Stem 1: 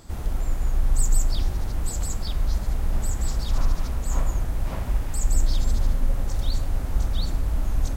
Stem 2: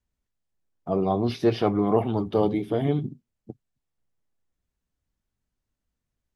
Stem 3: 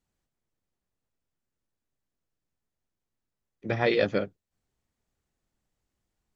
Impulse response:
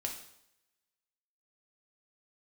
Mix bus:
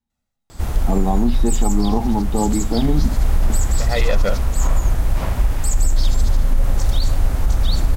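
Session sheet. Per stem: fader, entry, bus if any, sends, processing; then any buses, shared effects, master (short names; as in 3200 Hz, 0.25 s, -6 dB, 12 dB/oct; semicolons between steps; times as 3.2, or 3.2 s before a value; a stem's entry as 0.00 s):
+2.0 dB, 0.50 s, no send, dry
-4.5 dB, 0.00 s, no send, small resonant body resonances 230/830/3800 Hz, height 16 dB
0.0 dB, 0.10 s, no send, comb 1.5 ms; auto duck -15 dB, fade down 0.70 s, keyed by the second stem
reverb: off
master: bell 250 Hz -2.5 dB 2.2 oct; AGC; limiter -7 dBFS, peak gain reduction 5.5 dB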